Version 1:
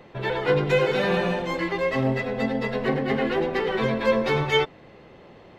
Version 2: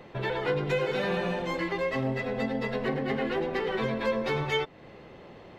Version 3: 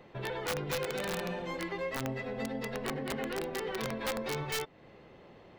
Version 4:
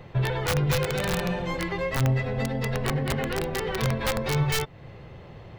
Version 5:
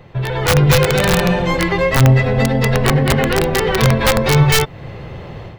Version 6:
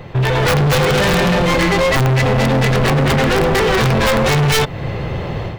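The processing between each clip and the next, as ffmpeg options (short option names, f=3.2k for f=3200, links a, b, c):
-af "acompressor=threshold=-30dB:ratio=2"
-af "aeval=exprs='(mod(10*val(0)+1,2)-1)/10':c=same,volume=-6.5dB"
-af "lowshelf=f=170:t=q:w=1.5:g=10,volume=7.5dB"
-af "dynaudnorm=f=260:g=3:m=11dB,volume=2.5dB"
-af "volume=21dB,asoftclip=hard,volume=-21dB,volume=8.5dB"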